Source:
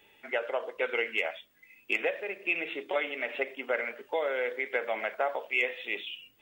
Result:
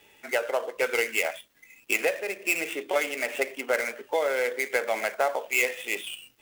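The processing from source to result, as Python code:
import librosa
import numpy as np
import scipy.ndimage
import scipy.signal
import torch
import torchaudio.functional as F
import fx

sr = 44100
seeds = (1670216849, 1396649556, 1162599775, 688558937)

y = fx.dead_time(x, sr, dead_ms=0.057)
y = F.gain(torch.from_numpy(y), 4.5).numpy()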